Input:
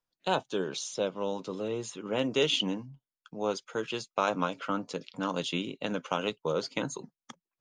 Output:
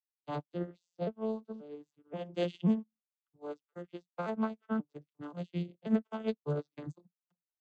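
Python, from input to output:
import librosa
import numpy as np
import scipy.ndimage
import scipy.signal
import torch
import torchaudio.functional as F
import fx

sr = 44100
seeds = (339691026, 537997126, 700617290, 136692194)

y = fx.vocoder_arp(x, sr, chord='minor triad', root=50, every_ms=532)
y = fx.upward_expand(y, sr, threshold_db=-48.0, expansion=2.5)
y = y * librosa.db_to_amplitude(2.5)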